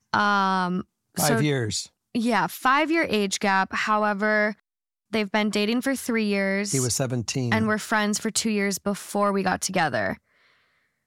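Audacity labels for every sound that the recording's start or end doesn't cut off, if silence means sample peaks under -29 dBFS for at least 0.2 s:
1.170000	1.830000	sound
2.150000	4.520000	sound
5.130000	10.140000	sound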